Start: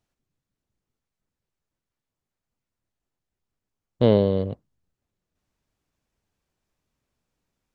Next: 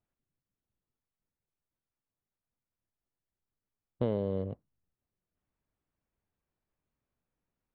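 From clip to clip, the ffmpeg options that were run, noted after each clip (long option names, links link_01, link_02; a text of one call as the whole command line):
ffmpeg -i in.wav -af "acompressor=threshold=-18dB:ratio=6,lowpass=2300,volume=-7.5dB" out.wav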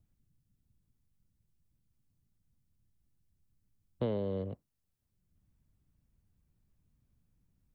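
ffmpeg -i in.wav -filter_complex "[0:a]acrossover=split=210|300|910[link_01][link_02][link_03][link_04];[link_01]acompressor=mode=upward:threshold=-52dB:ratio=2.5[link_05];[link_05][link_02][link_03][link_04]amix=inputs=4:normalize=0,highshelf=frequency=3200:gain=8.5,volume=-2.5dB" out.wav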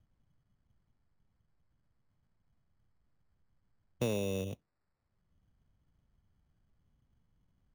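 ffmpeg -i in.wav -af "acrusher=samples=14:mix=1:aa=0.000001" out.wav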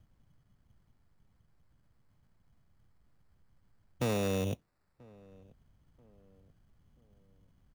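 ffmpeg -i in.wav -filter_complex "[0:a]asplit=2[link_01][link_02];[link_02]alimiter=level_in=7dB:limit=-24dB:level=0:latency=1,volume=-7dB,volume=-2dB[link_03];[link_01][link_03]amix=inputs=2:normalize=0,volume=29.5dB,asoftclip=hard,volume=-29.5dB,asplit=2[link_04][link_05];[link_05]adelay=985,lowpass=frequency=1100:poles=1,volume=-24dB,asplit=2[link_06][link_07];[link_07]adelay=985,lowpass=frequency=1100:poles=1,volume=0.45,asplit=2[link_08][link_09];[link_09]adelay=985,lowpass=frequency=1100:poles=1,volume=0.45[link_10];[link_04][link_06][link_08][link_10]amix=inputs=4:normalize=0,volume=2dB" out.wav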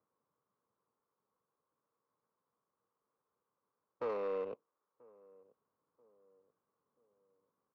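ffmpeg -i in.wav -filter_complex "[0:a]asplit=2[link_01][link_02];[link_02]highpass=frequency=720:poles=1,volume=4dB,asoftclip=type=tanh:threshold=-27dB[link_03];[link_01][link_03]amix=inputs=2:normalize=0,lowpass=frequency=1700:poles=1,volume=-6dB,highpass=450,equalizer=frequency=460:width_type=q:width=4:gain=8,equalizer=frequency=700:width_type=q:width=4:gain=-8,equalizer=frequency=1100:width_type=q:width=4:gain=9,equalizer=frequency=1800:width_type=q:width=4:gain=-5,lowpass=frequency=2400:width=0.5412,lowpass=frequency=2400:width=1.3066,adynamicsmooth=sensitivity=7:basefreq=1300,volume=-1.5dB" out.wav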